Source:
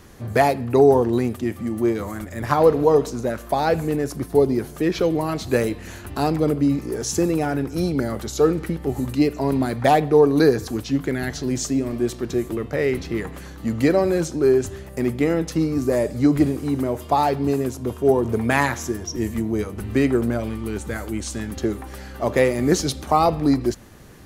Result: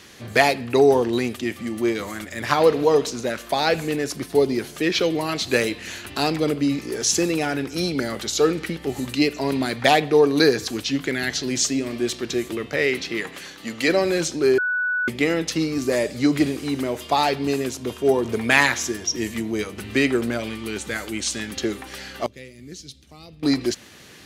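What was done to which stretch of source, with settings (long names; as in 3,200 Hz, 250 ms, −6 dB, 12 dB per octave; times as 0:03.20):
0:12.86–0:13.87: high-pass filter 130 Hz → 430 Hz 6 dB per octave
0:14.58–0:15.08: beep over 1,480 Hz −23 dBFS
0:22.26–0:23.43: guitar amp tone stack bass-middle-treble 10-0-1
whole clip: meter weighting curve D; level −1 dB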